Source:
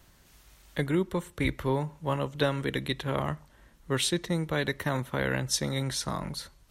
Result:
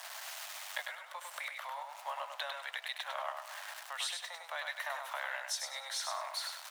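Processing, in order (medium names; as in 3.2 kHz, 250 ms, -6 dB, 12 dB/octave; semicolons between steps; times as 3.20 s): jump at every zero crossing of -40.5 dBFS; compression 6:1, threshold -36 dBFS, peak gain reduction 15 dB; steep high-pass 620 Hz 72 dB/octave; treble shelf 6.1 kHz -6 dB; feedback delay 100 ms, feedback 26%, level -5 dB; trim +4 dB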